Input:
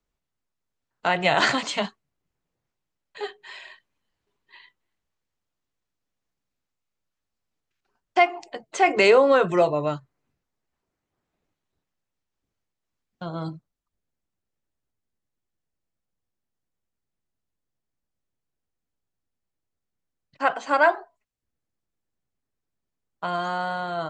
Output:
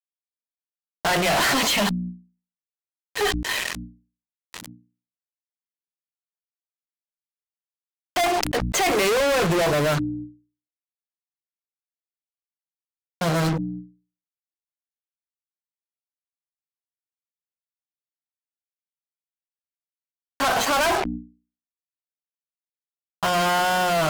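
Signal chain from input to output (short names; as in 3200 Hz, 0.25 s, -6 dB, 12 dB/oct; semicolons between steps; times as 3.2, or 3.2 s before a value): fuzz box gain 46 dB, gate -42 dBFS; wow and flutter 22 cents; notches 60/120/180/240/300 Hz; sustainer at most 43 dB/s; gain -6 dB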